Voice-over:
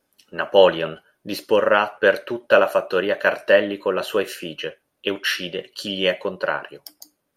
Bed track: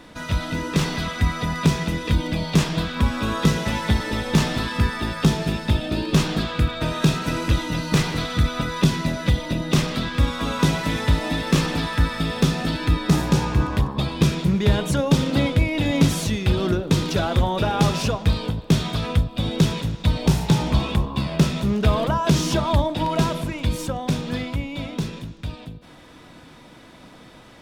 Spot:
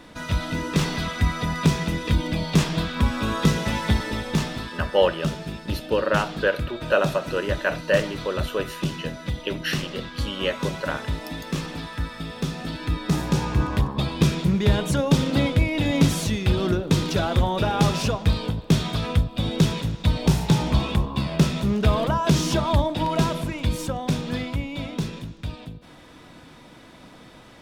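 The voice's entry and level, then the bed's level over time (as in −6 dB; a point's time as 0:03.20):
4.40 s, −5.5 dB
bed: 0:03.95 −1 dB
0:04.80 −9 dB
0:12.35 −9 dB
0:13.73 −1 dB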